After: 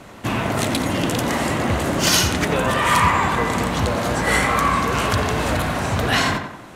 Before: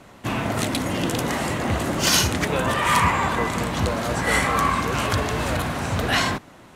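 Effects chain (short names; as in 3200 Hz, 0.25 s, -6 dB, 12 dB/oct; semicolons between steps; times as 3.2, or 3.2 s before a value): in parallel at -0.5 dB: compressor, threshold -31 dBFS, peak gain reduction 15.5 dB; on the sum: tape echo 89 ms, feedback 49%, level -6 dB, low-pass 2800 Hz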